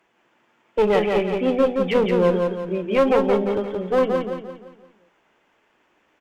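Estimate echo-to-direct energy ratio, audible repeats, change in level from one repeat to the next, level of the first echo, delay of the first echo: −3.0 dB, 5, −7.5 dB, −4.0 dB, 173 ms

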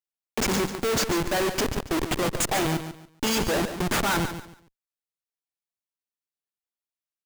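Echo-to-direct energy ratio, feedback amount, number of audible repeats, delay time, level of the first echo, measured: −9.5 dB, 26%, 3, 142 ms, −10.0 dB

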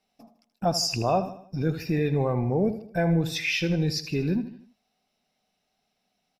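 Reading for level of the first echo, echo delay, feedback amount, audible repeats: −12.5 dB, 78 ms, 45%, 4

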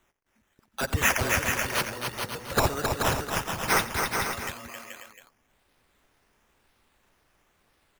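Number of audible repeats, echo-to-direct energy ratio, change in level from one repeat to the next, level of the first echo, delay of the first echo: 5, −1.0 dB, repeats not evenly spaced, −16.5 dB, 89 ms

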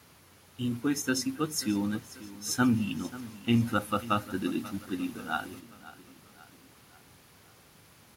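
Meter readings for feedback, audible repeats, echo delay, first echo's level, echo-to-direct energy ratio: 49%, 3, 536 ms, −17.5 dB, −16.5 dB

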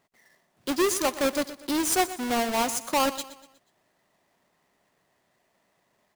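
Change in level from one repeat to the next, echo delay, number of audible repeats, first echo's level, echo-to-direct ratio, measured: −7.5 dB, 121 ms, 3, −15.0 dB, −14.0 dB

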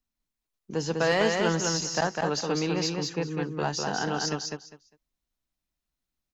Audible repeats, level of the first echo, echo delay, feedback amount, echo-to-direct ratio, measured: 3, −3.5 dB, 201 ms, 19%, −3.5 dB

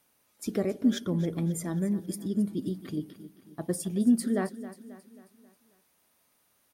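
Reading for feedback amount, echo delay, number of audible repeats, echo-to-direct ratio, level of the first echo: 49%, 269 ms, 4, −14.0 dB, −15.0 dB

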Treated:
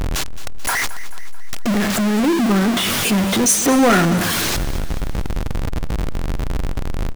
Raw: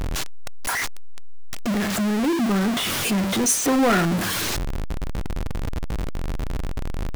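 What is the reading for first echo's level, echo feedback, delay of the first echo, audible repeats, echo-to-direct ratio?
−15.5 dB, 54%, 218 ms, 4, −14.0 dB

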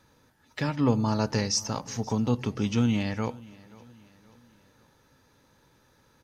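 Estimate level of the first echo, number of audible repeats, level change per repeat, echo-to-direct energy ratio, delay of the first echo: −22.0 dB, 2, −7.0 dB, −21.0 dB, 530 ms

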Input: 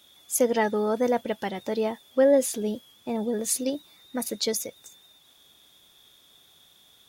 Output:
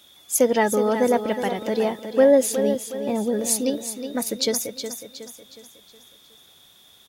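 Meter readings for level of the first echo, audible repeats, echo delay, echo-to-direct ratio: −9.0 dB, 4, 366 ms, −8.0 dB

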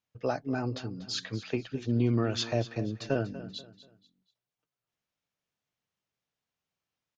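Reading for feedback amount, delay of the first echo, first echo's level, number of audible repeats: 35%, 241 ms, −15.0 dB, 3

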